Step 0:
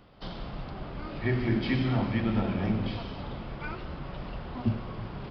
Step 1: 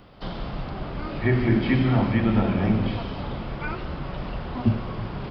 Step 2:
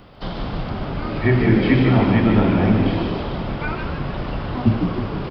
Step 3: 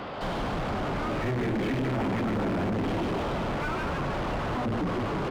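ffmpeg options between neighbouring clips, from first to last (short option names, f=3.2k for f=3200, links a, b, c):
-filter_complex "[0:a]acrossover=split=3000[a][b];[b]acompressor=threshold=-54dB:ratio=4:attack=1:release=60[c];[a][c]amix=inputs=2:normalize=0,volume=6.5dB"
-filter_complex "[0:a]asplit=7[a][b][c][d][e][f][g];[b]adelay=151,afreqshift=68,volume=-7dB[h];[c]adelay=302,afreqshift=136,volume=-12.5dB[i];[d]adelay=453,afreqshift=204,volume=-18dB[j];[e]adelay=604,afreqshift=272,volume=-23.5dB[k];[f]adelay=755,afreqshift=340,volume=-29.1dB[l];[g]adelay=906,afreqshift=408,volume=-34.6dB[m];[a][h][i][j][k][l][m]amix=inputs=7:normalize=0,volume=4.5dB"
-filter_complex "[0:a]volume=21.5dB,asoftclip=hard,volume=-21.5dB,asplit=2[a][b];[b]highpass=f=720:p=1,volume=28dB,asoftclip=type=tanh:threshold=-21.5dB[c];[a][c]amix=inputs=2:normalize=0,lowpass=f=1.2k:p=1,volume=-6dB,volume=-2.5dB"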